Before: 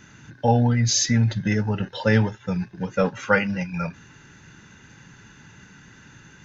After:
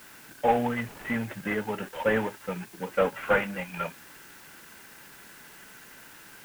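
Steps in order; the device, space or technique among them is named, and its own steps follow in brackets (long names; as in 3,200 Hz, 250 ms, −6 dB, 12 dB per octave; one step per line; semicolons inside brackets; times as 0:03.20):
army field radio (band-pass filter 340–2,900 Hz; variable-slope delta modulation 16 kbit/s; white noise bed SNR 21 dB)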